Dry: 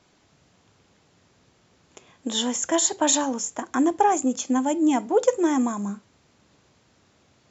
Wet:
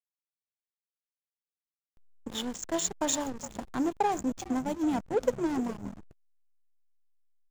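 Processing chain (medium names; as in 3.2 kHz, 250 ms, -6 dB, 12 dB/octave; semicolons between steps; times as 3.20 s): frequency-shifting echo 414 ms, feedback 48%, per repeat -59 Hz, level -13 dB; hysteresis with a dead band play -20.5 dBFS; trim -7 dB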